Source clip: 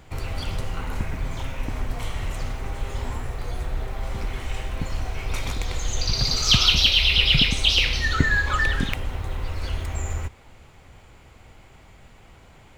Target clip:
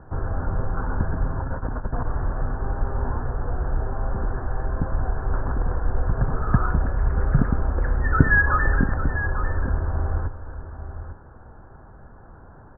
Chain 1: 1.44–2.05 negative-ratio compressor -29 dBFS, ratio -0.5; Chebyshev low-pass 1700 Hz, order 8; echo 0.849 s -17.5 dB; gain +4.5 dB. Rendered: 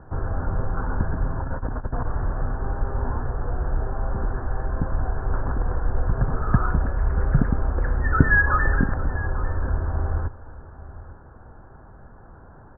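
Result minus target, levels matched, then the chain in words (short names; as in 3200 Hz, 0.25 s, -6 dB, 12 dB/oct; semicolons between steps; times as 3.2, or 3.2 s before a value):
echo-to-direct -6.5 dB
1.44–2.05 negative-ratio compressor -29 dBFS, ratio -0.5; Chebyshev low-pass 1700 Hz, order 8; echo 0.849 s -11 dB; gain +4.5 dB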